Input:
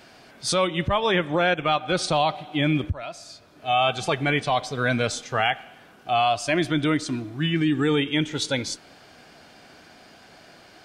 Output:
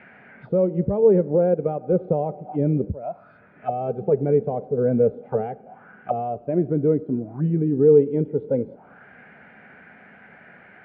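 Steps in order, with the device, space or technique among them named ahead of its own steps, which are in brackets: envelope filter bass rig (envelope low-pass 450–2100 Hz down, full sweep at -24 dBFS; speaker cabinet 80–2400 Hz, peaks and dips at 98 Hz -5 dB, 200 Hz +6 dB, 320 Hz -10 dB, 660 Hz -5 dB, 1100 Hz -10 dB, 1800 Hz -6 dB); gain +2 dB

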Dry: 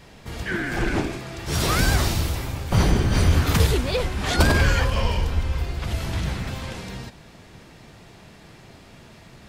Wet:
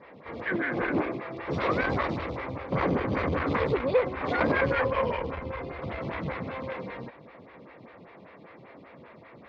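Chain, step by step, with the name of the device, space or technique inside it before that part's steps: LPF 8100 Hz; vibe pedal into a guitar amplifier (photocell phaser 5.1 Hz; tube stage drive 21 dB, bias 0.4; speaker cabinet 99–3400 Hz, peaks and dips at 280 Hz +4 dB, 520 Hz +9 dB, 1100 Hz +7 dB, 2100 Hz +7 dB, 3000 Hz -5 dB)

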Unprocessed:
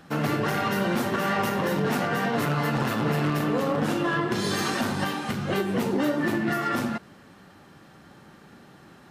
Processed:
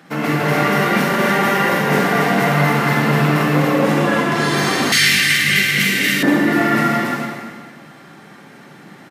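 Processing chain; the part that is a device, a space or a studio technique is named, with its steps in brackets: stadium PA (HPF 130 Hz 24 dB/oct; bell 2100 Hz +8 dB 0.29 oct; loudspeakers at several distances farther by 57 m -10 dB, 97 m -3 dB; reverb RT60 1.6 s, pre-delay 41 ms, DRR -1.5 dB); 4.92–6.23 EQ curve 110 Hz 0 dB, 910 Hz -18 dB, 2000 Hz +11 dB; gain +3.5 dB

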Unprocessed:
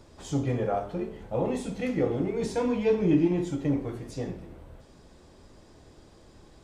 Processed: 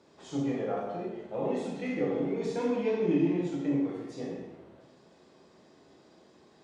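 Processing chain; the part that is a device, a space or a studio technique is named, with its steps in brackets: supermarket ceiling speaker (BPF 220–6000 Hz; reverb RT60 0.90 s, pre-delay 22 ms, DRR -1 dB); gain -6 dB

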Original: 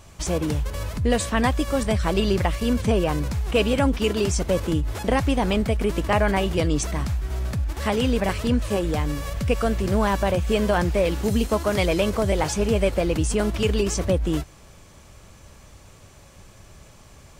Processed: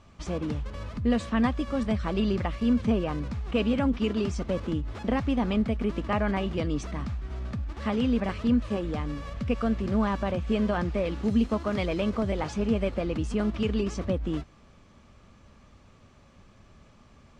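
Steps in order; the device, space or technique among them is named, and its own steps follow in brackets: inside a cardboard box (LPF 4300 Hz 12 dB/oct; small resonant body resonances 230/1200 Hz, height 9 dB); gain -8 dB

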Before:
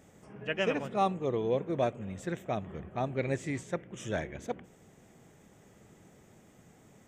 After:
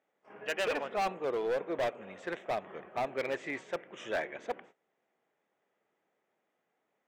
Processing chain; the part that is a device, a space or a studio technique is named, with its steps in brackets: walkie-talkie (BPF 530–2900 Hz; hard clip -32.5 dBFS, distortion -7 dB; gate -58 dBFS, range -20 dB); gain +5 dB

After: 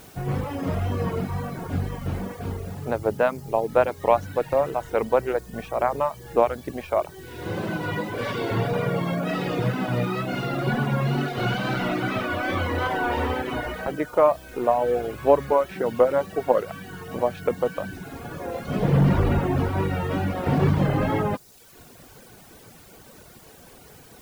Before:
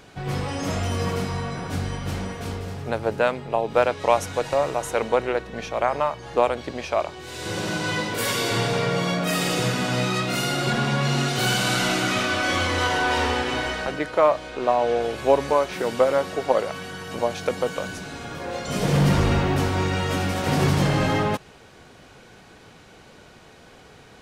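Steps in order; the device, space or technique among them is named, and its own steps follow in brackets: cassette deck with a dirty head (tape spacing loss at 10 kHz 36 dB; wow and flutter; white noise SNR 27 dB); reverb removal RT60 0.79 s; gain +3 dB

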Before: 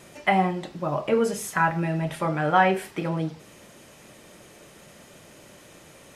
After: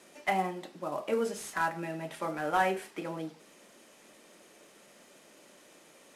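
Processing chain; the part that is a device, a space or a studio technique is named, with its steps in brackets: early wireless headset (HPF 210 Hz 24 dB/oct; CVSD 64 kbps); gain -7.5 dB

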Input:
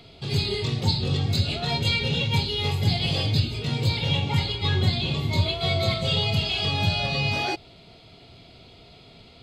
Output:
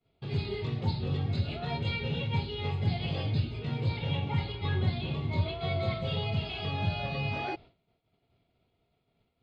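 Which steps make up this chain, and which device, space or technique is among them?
hearing-loss simulation (LPF 2300 Hz 12 dB/oct; expander -38 dBFS); gain -6 dB

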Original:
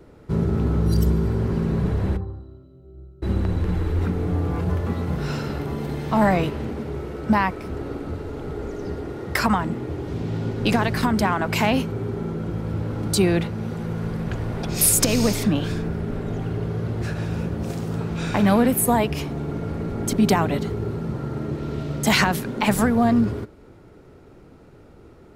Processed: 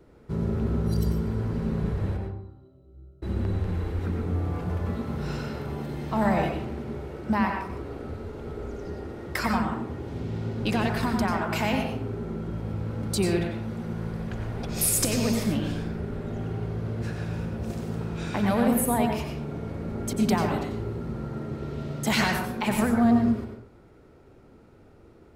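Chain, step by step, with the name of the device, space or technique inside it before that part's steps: bathroom (reverb RT60 0.60 s, pre-delay 86 ms, DRR 2.5 dB); gain -7 dB

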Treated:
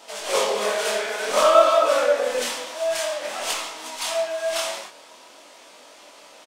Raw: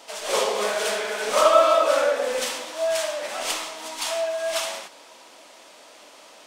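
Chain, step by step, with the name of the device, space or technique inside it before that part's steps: double-tracked vocal (doubler 24 ms -13 dB; chorus 0.53 Hz, delay 19.5 ms, depth 7.7 ms); gain +3.5 dB

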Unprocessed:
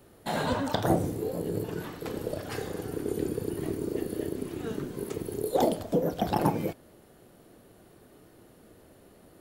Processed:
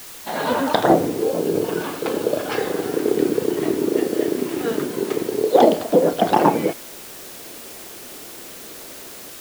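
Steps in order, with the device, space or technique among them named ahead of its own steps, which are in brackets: dictaphone (BPF 270–3900 Hz; AGC gain up to 11.5 dB; wow and flutter; white noise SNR 17 dB); 1.23–2.58 notch 1900 Hz, Q 9.2; gain +2 dB

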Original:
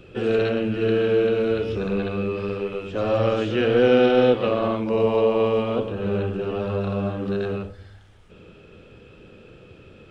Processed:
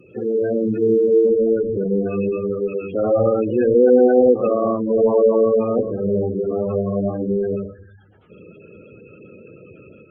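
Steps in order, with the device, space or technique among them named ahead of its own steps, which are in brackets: noise-suppressed video call (HPF 130 Hz 12 dB/oct; spectral gate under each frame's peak -15 dB strong; AGC gain up to 5.5 dB; Opus 24 kbps 48000 Hz)

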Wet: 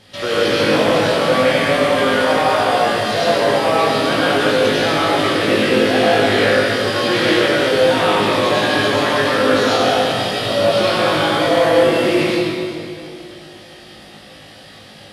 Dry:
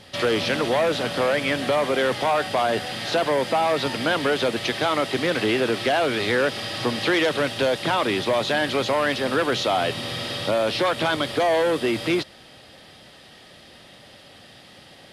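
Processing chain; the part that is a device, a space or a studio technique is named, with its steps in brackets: tunnel (flutter echo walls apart 3.3 m, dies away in 0.23 s; reverb RT60 2.5 s, pre-delay 76 ms, DRR -7.5 dB); gain -2.5 dB

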